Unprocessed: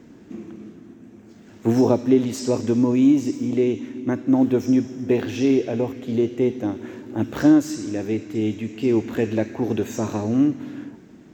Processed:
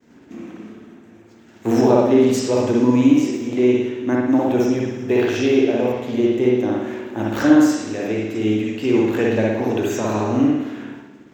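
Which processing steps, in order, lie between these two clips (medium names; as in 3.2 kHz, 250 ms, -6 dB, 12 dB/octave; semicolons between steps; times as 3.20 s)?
expander -41 dBFS; bass shelf 390 Hz -9 dB; reverberation RT60 0.90 s, pre-delay 56 ms, DRR -3 dB; trim +4 dB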